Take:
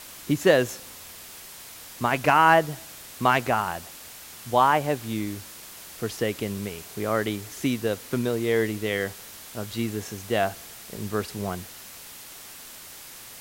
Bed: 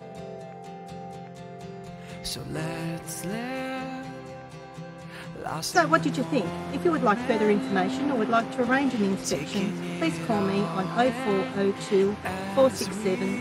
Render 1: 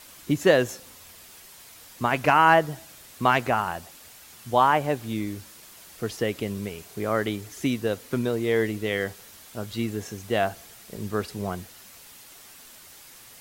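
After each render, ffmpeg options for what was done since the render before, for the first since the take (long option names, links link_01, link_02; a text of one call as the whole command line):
ffmpeg -i in.wav -af "afftdn=noise_reduction=6:noise_floor=-44" out.wav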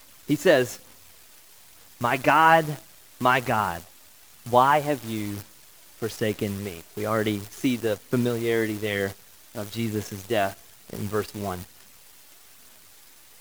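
ffmpeg -i in.wav -af "aphaser=in_gain=1:out_gain=1:delay=3.4:decay=0.31:speed=1.1:type=sinusoidal,acrusher=bits=7:dc=4:mix=0:aa=0.000001" out.wav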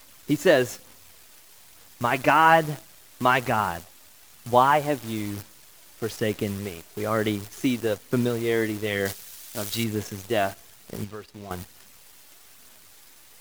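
ffmpeg -i in.wav -filter_complex "[0:a]asettb=1/sr,asplit=3[link_01][link_02][link_03];[link_01]atrim=end=9.054[link_04];[link_02]atrim=start=9.05:end=9.84,asetpts=PTS-STARTPTS,afade=type=in:duration=0.004:curve=qsin,afade=type=out:start_time=0.786:duration=0.004:curve=qsin,highshelf=frequency=2200:gain=10[link_05];[link_03]atrim=start=9.836[link_06];[link_04][link_05]acrossfade=duration=0.004:curve1=hsin:curve2=qsin[link_07];[link_07][link_06]acrossfade=duration=0.004:curve1=qsin:curve2=hsin,asettb=1/sr,asplit=3[link_08][link_09][link_10];[link_08]atrim=end=11.044[link_11];[link_09]atrim=start=11.04:end=11.51,asetpts=PTS-STARTPTS,afade=type=in:duration=0.004:curve=qsin,afade=type=out:start_time=0.466:duration=0.004:curve=qsin,acrossover=split=2000|5800[link_12][link_13][link_14];[link_12]acompressor=threshold=-38dB:ratio=4[link_15];[link_13]acompressor=threshold=-53dB:ratio=4[link_16];[link_14]acompressor=threshold=-59dB:ratio=4[link_17];[link_15][link_16][link_17]amix=inputs=3:normalize=0[link_18];[link_10]atrim=start=11.506[link_19];[link_11][link_18]acrossfade=duration=0.004:curve1=hsin:curve2=qsin[link_20];[link_20][link_19]acrossfade=duration=0.004:curve1=qsin:curve2=hsin" out.wav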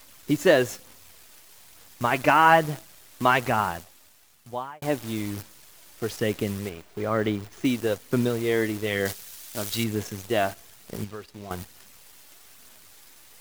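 ffmpeg -i in.wav -filter_complex "[0:a]asettb=1/sr,asplit=3[link_01][link_02][link_03];[link_01]atrim=end=6.694[link_04];[link_02]atrim=start=6.69:end=7.65,asetpts=PTS-STARTPTS,afade=type=in:duration=0.004:curve=qsin,afade=type=out:start_time=0.956:duration=0.004:curve=qsin,equalizer=frequency=12000:width_type=o:width=2.2:gain=-11[link_05];[link_03]atrim=start=7.646[link_06];[link_04][link_05]acrossfade=duration=0.004:curve1=hsin:curve2=qsin[link_07];[link_07][link_06]acrossfade=duration=0.004:curve1=qsin:curve2=hsin,asplit=2[link_08][link_09];[link_08]atrim=end=4.82,asetpts=PTS-STARTPTS,afade=type=out:start_time=3.6:duration=1.22[link_10];[link_09]atrim=start=4.82,asetpts=PTS-STARTPTS,afade=type=in:duration=0.004:curve=hsin[link_11];[link_10][link_11]concat=n=2:v=0:a=1" out.wav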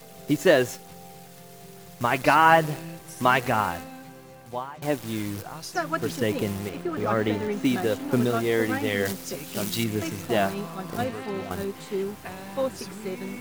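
ffmpeg -i in.wav -i bed.wav -filter_complex "[1:a]volume=-7dB[link_01];[0:a][link_01]amix=inputs=2:normalize=0" out.wav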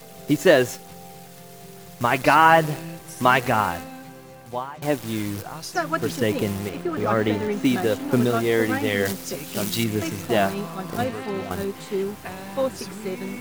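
ffmpeg -i in.wav -af "volume=3dB,alimiter=limit=-3dB:level=0:latency=1" out.wav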